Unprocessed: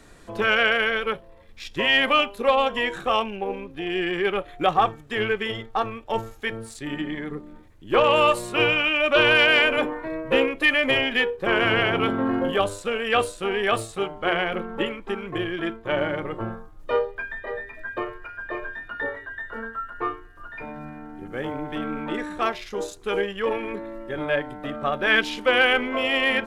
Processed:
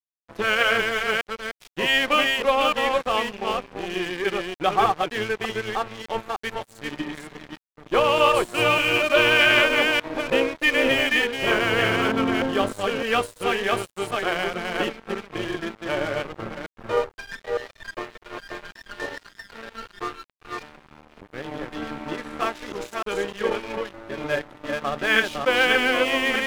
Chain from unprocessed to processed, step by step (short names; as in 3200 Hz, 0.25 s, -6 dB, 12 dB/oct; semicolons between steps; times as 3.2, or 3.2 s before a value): reverse delay 0.303 s, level -2.5 dB; crossover distortion -32.5 dBFS